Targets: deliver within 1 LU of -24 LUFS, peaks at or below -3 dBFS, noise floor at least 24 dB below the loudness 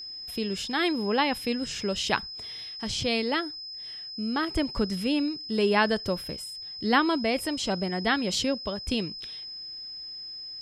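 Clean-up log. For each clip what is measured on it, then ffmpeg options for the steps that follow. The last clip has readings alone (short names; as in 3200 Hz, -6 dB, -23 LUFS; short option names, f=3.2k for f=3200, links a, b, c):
steady tone 5100 Hz; tone level -37 dBFS; loudness -28.5 LUFS; peak -8.5 dBFS; loudness target -24.0 LUFS
-> -af "bandreject=f=5.1k:w=30"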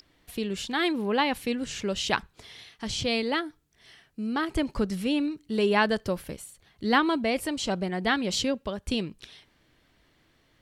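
steady tone none; loudness -28.0 LUFS; peak -8.5 dBFS; loudness target -24.0 LUFS
-> -af "volume=4dB"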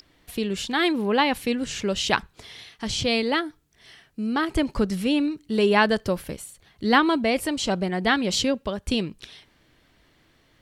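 loudness -24.0 LUFS; peak -4.5 dBFS; noise floor -62 dBFS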